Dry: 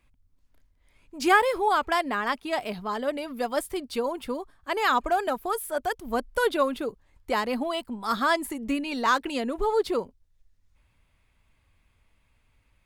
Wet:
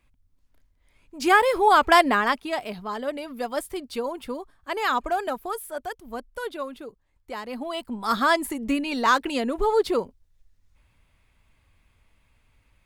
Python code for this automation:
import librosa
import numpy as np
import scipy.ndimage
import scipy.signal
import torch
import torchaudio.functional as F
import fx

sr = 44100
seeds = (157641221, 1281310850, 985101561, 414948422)

y = fx.gain(x, sr, db=fx.line((1.19, 0.0), (2.0, 9.5), (2.61, -1.0), (5.32, -1.0), (6.38, -8.5), (7.39, -8.5), (7.96, 3.0)))